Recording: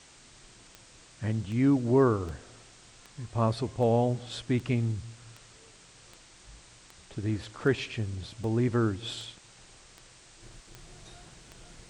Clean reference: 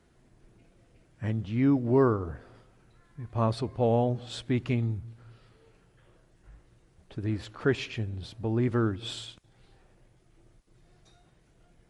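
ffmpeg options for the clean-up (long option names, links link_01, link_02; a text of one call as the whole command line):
ffmpeg -i in.wav -af "adeclick=threshold=4,afwtdn=0.0025,asetnsamples=nb_out_samples=441:pad=0,asendcmd='10.42 volume volume -9dB',volume=0dB" out.wav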